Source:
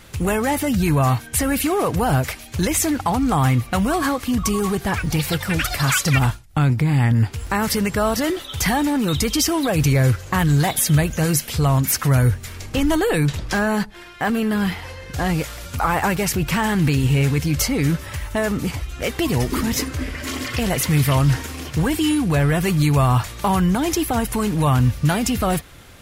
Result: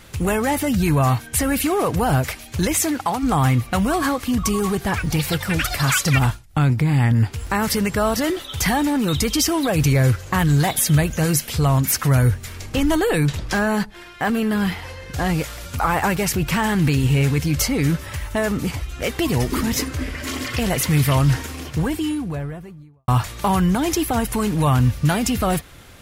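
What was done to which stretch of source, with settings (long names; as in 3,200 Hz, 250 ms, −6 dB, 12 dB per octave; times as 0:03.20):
0:02.73–0:03.22: high-pass filter 120 Hz → 480 Hz 6 dB per octave
0:21.36–0:23.08: fade out and dull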